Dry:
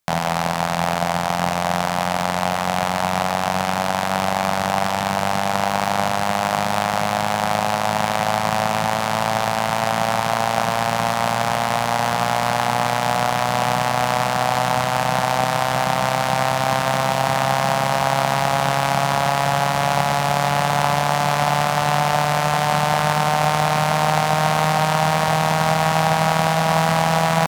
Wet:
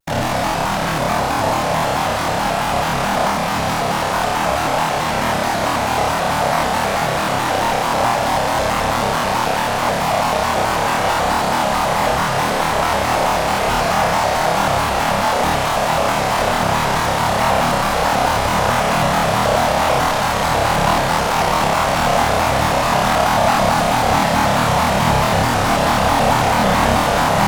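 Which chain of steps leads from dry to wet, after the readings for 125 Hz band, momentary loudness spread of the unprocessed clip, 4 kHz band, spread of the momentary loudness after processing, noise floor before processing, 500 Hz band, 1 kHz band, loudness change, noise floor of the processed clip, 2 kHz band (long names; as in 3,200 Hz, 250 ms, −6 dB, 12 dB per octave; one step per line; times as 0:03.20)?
+1.0 dB, 3 LU, +3.0 dB, 3 LU, −22 dBFS, +3.5 dB, +2.5 dB, +3.0 dB, −19 dBFS, +3.0 dB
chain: random phases in short frames
on a send: flutter between parallel walls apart 4.7 metres, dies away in 0.98 s
on the sum: pitch modulation by a square or saw wave square 4.6 Hz, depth 160 cents
level −2 dB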